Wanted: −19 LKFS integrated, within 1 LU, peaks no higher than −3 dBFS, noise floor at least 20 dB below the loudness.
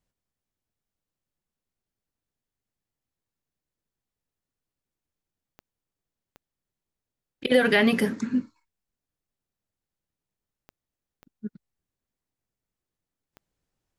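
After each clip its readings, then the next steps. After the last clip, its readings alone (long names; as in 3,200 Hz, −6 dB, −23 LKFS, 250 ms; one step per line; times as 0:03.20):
number of clicks 5; integrated loudness −23.0 LKFS; sample peak −8.5 dBFS; target loudness −19.0 LKFS
→ click removal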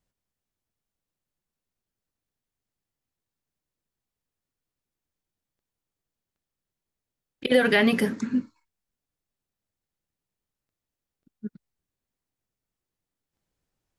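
number of clicks 0; integrated loudness −23.0 LKFS; sample peak −8.5 dBFS; target loudness −19.0 LKFS
→ level +4 dB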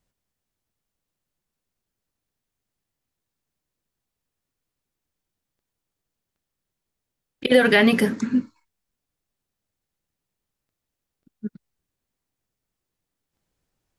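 integrated loudness −19.0 LKFS; sample peak −4.5 dBFS; background noise floor −84 dBFS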